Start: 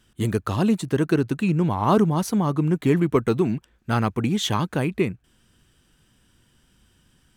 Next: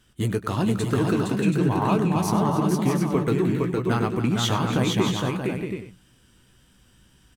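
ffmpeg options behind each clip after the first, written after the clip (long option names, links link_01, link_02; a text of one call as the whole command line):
ffmpeg -i in.wav -filter_complex "[0:a]acompressor=threshold=-20dB:ratio=6,asplit=2[link_01][link_02];[link_02]adelay=16,volume=-9dB[link_03];[link_01][link_03]amix=inputs=2:normalize=0,asplit=2[link_04][link_05];[link_05]aecho=0:1:99|285|462|630|727|822:0.178|0.224|0.668|0.447|0.398|0.126[link_06];[link_04][link_06]amix=inputs=2:normalize=0" out.wav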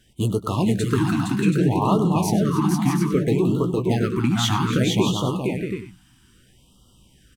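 ffmpeg -i in.wav -af "afftfilt=real='re*(1-between(b*sr/1024,470*pow(2000/470,0.5+0.5*sin(2*PI*0.62*pts/sr))/1.41,470*pow(2000/470,0.5+0.5*sin(2*PI*0.62*pts/sr))*1.41))':imag='im*(1-between(b*sr/1024,470*pow(2000/470,0.5+0.5*sin(2*PI*0.62*pts/sr))/1.41,470*pow(2000/470,0.5+0.5*sin(2*PI*0.62*pts/sr))*1.41))':win_size=1024:overlap=0.75,volume=2.5dB" out.wav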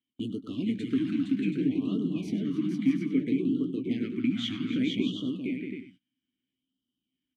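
ffmpeg -i in.wav -filter_complex "[0:a]asplit=3[link_01][link_02][link_03];[link_01]bandpass=frequency=270:width_type=q:width=8,volume=0dB[link_04];[link_02]bandpass=frequency=2290:width_type=q:width=8,volume=-6dB[link_05];[link_03]bandpass=frequency=3010:width_type=q:width=8,volume=-9dB[link_06];[link_04][link_05][link_06]amix=inputs=3:normalize=0,agate=range=-20dB:threshold=-56dB:ratio=16:detection=peak,volume=2.5dB" out.wav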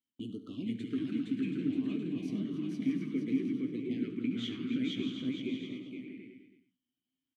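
ffmpeg -i in.wav -af "aecho=1:1:49|69|470|576|681|798:0.106|0.178|0.596|0.237|0.141|0.112,volume=-7.5dB" out.wav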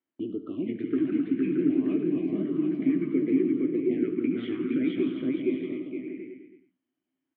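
ffmpeg -i in.wav -af "highpass=110,equalizer=frequency=120:width_type=q:width=4:gain=-7,equalizer=frequency=220:width_type=q:width=4:gain=-8,equalizer=frequency=350:width_type=q:width=4:gain=9,equalizer=frequency=630:width_type=q:width=4:gain=6,lowpass=frequency=2200:width=0.5412,lowpass=frequency=2200:width=1.3066,volume=7.5dB" out.wav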